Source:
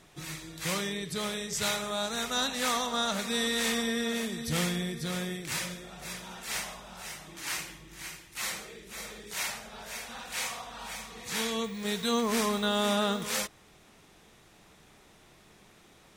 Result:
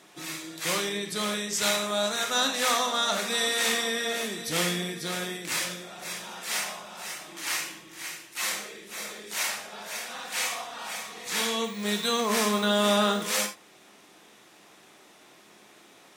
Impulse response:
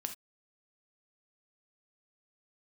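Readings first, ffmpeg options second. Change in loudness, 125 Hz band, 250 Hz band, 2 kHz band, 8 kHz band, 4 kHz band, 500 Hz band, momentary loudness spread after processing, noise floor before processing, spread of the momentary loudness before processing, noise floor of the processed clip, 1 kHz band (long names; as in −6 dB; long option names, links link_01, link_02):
+4.0 dB, −1.0 dB, +0.5 dB, +4.5 dB, +5.0 dB, +4.5 dB, +4.0 dB, 13 LU, −58 dBFS, 13 LU, −55 dBFS, +4.5 dB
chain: -filter_complex "[0:a]highpass=260[link_01];[1:a]atrim=start_sample=2205[link_02];[link_01][link_02]afir=irnorm=-1:irlink=0,volume=5.5dB"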